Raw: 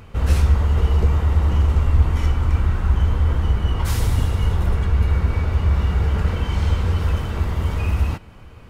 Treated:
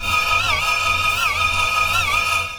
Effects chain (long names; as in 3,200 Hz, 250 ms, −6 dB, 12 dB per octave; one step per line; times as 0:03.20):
channel vocoder with a chord as carrier bare fifth, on F3
high-shelf EQ 4,200 Hz +12 dB
in parallel at 0 dB: compressor whose output falls as the input rises −33 dBFS, ratio −0.5
on the sum: steady tone 1,200 Hz −49 dBFS
ring modulation 550 Hz
change of speed 3.37×
rotating-speaker cabinet horn 5.5 Hz
backwards echo 59 ms −3 dB
convolution reverb RT60 0.30 s, pre-delay 3 ms, DRR −8.5 dB
wow of a warped record 78 rpm, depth 160 cents